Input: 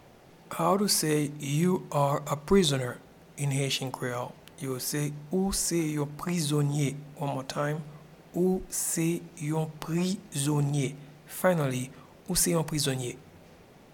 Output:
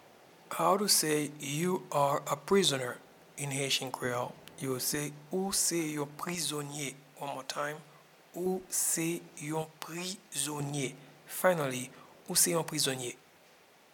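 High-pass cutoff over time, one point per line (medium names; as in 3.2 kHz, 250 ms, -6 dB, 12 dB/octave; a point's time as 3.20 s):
high-pass 6 dB/octave
430 Hz
from 4.05 s 150 Hz
from 4.95 s 450 Hz
from 6.35 s 990 Hz
from 8.46 s 460 Hz
from 9.62 s 1.1 kHz
from 10.60 s 430 Hz
from 13.10 s 1.1 kHz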